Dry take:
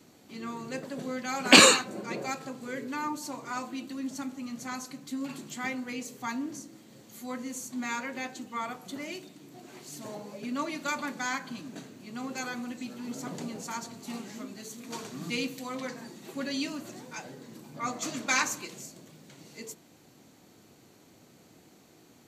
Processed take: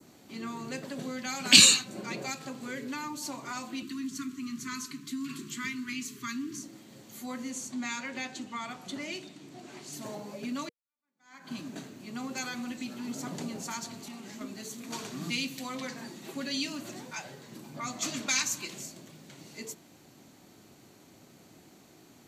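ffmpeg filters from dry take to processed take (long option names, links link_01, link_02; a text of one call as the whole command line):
ffmpeg -i in.wav -filter_complex "[0:a]asettb=1/sr,asplit=3[link_01][link_02][link_03];[link_01]atrim=end=3.824[link_04];[link_02]atrim=start=3.82:end=6.63,asetpts=PTS-STARTPTS,afade=type=in:duration=0.004:curve=qsin,afade=type=out:start_time=2.806:duration=0.004:curve=qsin,asuperstop=centerf=650:order=20:qfactor=1.1[link_05];[link_03]atrim=start=6.626[link_06];[link_04][link_05]acrossfade=duration=0.004:curve1=hsin:curve2=qsin[link_07];[link_07][link_06]acrossfade=duration=0.004:curve1=qsin:curve2=hsin,asettb=1/sr,asplit=3[link_08][link_09][link_10];[link_08]atrim=end=7.504[link_11];[link_09]atrim=start=7.5:end=9.93,asetpts=PTS-STARTPTS,afade=type=in:duration=0.004:curve=qsin,afade=type=out:start_time=2.426:duration=0.004:curve=qsin,lowpass=9200[link_12];[link_10]atrim=start=9.926[link_13];[link_11][link_12]acrossfade=duration=0.004:curve1=hsin:curve2=qsin[link_14];[link_14][link_13]acrossfade=duration=0.004:curve1=qsin:curve2=hsin,asettb=1/sr,asplit=3[link_15][link_16][link_17];[link_15]atrim=end=13.964[link_18];[link_16]atrim=start=13.96:end=14.41,asetpts=PTS-STARTPTS,afade=type=in:duration=0.004:curve=qsin,afade=type=out:start_time=0.446:duration=0.004:curve=qsin,acompressor=threshold=-42dB:ratio=5:attack=3.2:release=140:knee=1:detection=peak[link_19];[link_17]atrim=start=14.406[link_20];[link_18][link_19]acrossfade=duration=0.004:curve1=hsin:curve2=qsin[link_21];[link_21][link_20]acrossfade=duration=0.004:curve1=qsin:curve2=hsin,asettb=1/sr,asplit=3[link_22][link_23][link_24];[link_22]atrim=end=17.104[link_25];[link_23]atrim=start=17.1:end=17.52,asetpts=PTS-STARTPTS,afade=type=in:duration=0.004:curve=qsin,afade=type=out:start_time=0.416:duration=0.004:curve=qsin,equalizer=frequency=270:width_type=o:width=0.77:gain=-9[link_26];[link_24]atrim=start=17.516[link_27];[link_25][link_26]acrossfade=duration=0.004:curve1=hsin:curve2=qsin[link_28];[link_28][link_27]acrossfade=duration=0.004:curve1=qsin:curve2=hsin,asplit=2[link_29][link_30];[link_29]atrim=end=10.69,asetpts=PTS-STARTPTS,afade=type=out:start_time=10.686:duration=0.004:curve=hsin[link_31];[link_30]atrim=start=10.69,asetpts=PTS-STARTPTS,afade=type=in:duration=0.83:curve=exp[link_32];[link_31][link_32]concat=n=2:v=0:a=1,bandreject=frequency=480:width=12,adynamicequalizer=threshold=0.00631:dfrequency=2900:dqfactor=0.77:tfrequency=2900:tqfactor=0.77:attack=5:release=100:ratio=0.375:range=2:mode=boostabove:tftype=bell,acrossover=split=210|3000[link_33][link_34][link_35];[link_34]acompressor=threshold=-38dB:ratio=6[link_36];[link_33][link_36][link_35]amix=inputs=3:normalize=0,volume=1.5dB" out.wav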